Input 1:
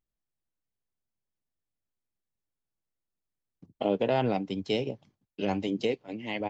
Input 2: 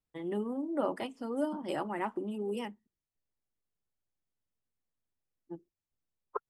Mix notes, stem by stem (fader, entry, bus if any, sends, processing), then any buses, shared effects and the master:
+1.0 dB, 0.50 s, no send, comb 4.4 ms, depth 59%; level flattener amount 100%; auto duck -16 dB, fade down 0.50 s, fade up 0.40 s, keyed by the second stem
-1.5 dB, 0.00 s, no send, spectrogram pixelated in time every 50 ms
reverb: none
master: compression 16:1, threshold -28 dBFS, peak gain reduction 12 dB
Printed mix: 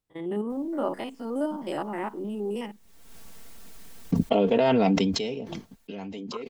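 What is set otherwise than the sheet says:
stem 2 -1.5 dB -> +5.0 dB; master: missing compression 16:1, threshold -28 dBFS, peak gain reduction 12 dB

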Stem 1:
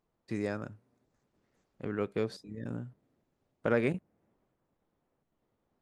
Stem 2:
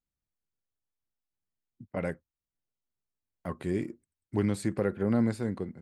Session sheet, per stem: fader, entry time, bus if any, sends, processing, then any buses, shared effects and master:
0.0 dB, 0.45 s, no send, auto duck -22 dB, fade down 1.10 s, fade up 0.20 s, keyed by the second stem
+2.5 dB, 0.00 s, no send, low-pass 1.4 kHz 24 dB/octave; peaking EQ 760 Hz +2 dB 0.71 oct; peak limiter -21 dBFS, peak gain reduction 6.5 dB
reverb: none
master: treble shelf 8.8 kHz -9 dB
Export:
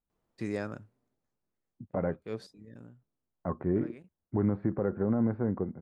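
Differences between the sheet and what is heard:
stem 1: entry 0.45 s -> 0.10 s; master: missing treble shelf 8.8 kHz -9 dB

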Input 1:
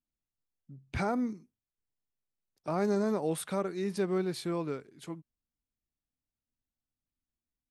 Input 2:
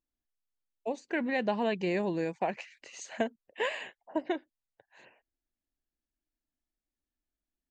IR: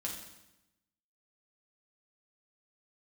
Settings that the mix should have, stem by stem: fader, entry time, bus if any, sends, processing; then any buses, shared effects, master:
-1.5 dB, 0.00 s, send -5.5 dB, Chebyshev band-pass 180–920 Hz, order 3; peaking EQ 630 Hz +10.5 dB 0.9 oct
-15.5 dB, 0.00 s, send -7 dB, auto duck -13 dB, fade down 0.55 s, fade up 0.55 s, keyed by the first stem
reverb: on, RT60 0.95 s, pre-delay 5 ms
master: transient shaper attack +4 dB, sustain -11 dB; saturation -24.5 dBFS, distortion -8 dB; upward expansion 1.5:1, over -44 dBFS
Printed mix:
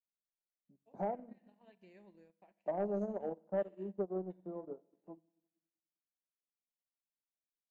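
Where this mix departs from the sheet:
stem 1 -1.5 dB -> -12.5 dB; stem 2 -15.5 dB -> -26.5 dB

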